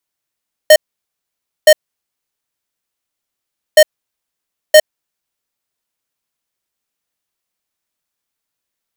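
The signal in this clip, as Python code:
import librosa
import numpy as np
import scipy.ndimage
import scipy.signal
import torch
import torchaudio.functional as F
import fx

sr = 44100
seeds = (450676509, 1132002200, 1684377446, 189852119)

y = fx.beep_pattern(sr, wave='square', hz=615.0, on_s=0.06, off_s=0.91, beeps=2, pause_s=2.04, groups=2, level_db=-3.5)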